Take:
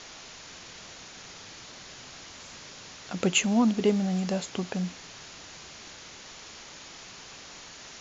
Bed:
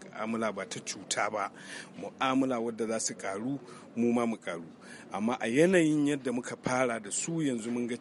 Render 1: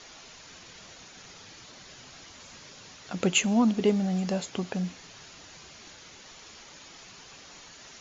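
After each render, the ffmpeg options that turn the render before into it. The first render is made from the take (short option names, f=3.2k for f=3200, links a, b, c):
-af "afftdn=nr=6:nf=-47"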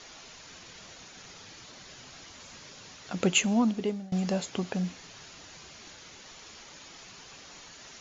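-filter_complex "[0:a]asplit=2[a][b];[a]atrim=end=4.12,asetpts=PTS-STARTPTS,afade=t=out:st=3.2:d=0.92:c=qsin:silence=0.0749894[c];[b]atrim=start=4.12,asetpts=PTS-STARTPTS,afade=t=in:d=0.004:c=hsin:silence=0.0749894[d];[c][d]concat=n=2:v=0:a=1"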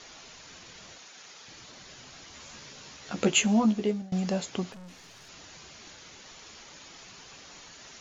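-filter_complex "[0:a]asettb=1/sr,asplit=3[a][b][c];[a]atrim=end=0.984[d];[b]atrim=start=0.98:end=1.48,asetpts=PTS-STARTPTS,afade=t=in:d=0.004:c=qsin,afade=t=out:st=0.496:d=0.004:c=qsin,highpass=f=590:p=1[e];[c]atrim=start=1.476[f];[d][e]acrossfade=d=0.004:c1=hsin:c2=qsin[g];[g][f]acrossfade=d=0.004:c1=qsin:c2=hsin,asettb=1/sr,asplit=3[h][i][j];[h]atrim=end=2.314[k];[i]atrim=start=2.31:end=4.02,asetpts=PTS-STARTPTS,afade=t=in:d=0.004:c=qsin,afade=t=out:st=1.706:d=0.004:c=qsin,asplit=2[l][m];[m]adelay=14,volume=-4dB[n];[l][n]amix=inputs=2:normalize=0,atrim=end_sample=75411[o];[j]atrim=start=4.016[p];[k][o]acrossfade=d=0.004:c1=hsin:c2=qsin[q];[q][p]acrossfade=d=0.004:c1=qsin:c2=hsin,asettb=1/sr,asplit=3[r][s][t];[r]atrim=end=4.724[u];[s]atrim=start=4.72:end=5.29,asetpts=PTS-STARTPTS,afade=t=in:d=0.004:c=qsin,afade=t=out:st=0.566:d=0.004:c=qsin,aeval=exprs='(tanh(178*val(0)+0.35)-tanh(0.35))/178':c=same[v];[t]atrim=start=5.286[w];[u][v]acrossfade=d=0.004:c1=hsin:c2=qsin[x];[x][w]acrossfade=d=0.004:c1=qsin:c2=hsin"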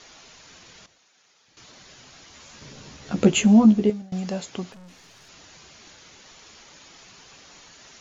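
-filter_complex "[0:a]asettb=1/sr,asplit=3[a][b][c];[a]atrim=end=2.614[d];[b]atrim=start=2.61:end=3.9,asetpts=PTS-STARTPTS,afade=t=in:d=0.004:c=qsin,afade=t=out:st=1.286:d=0.004:c=qsin,lowshelf=f=450:g=12[e];[c]atrim=start=3.896[f];[d][e]acrossfade=d=0.004:c1=hsin:c2=qsin[g];[g][f]acrossfade=d=0.004:c1=qsin:c2=hsin,asplit=3[h][i][j];[h]atrim=end=0.862[k];[i]atrim=start=0.858:end=1.572,asetpts=PTS-STARTPTS,volume=-12dB[l];[j]atrim=start=1.568[m];[k][l]acrossfade=d=0.004:c1=hsin:c2=hsin[n];[n][m]acrossfade=d=0.004:c1=hsin:c2=hsin"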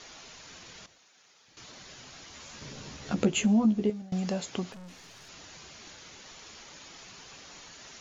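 -af "acompressor=threshold=-28dB:ratio=2"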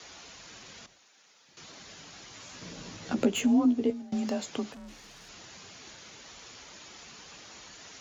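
-filter_complex "[0:a]afreqshift=34,acrossover=split=2200[a][b];[b]asoftclip=type=tanh:threshold=-28.5dB[c];[a][c]amix=inputs=2:normalize=0"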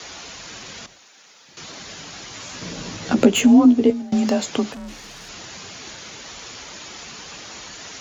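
-af "volume=11.5dB"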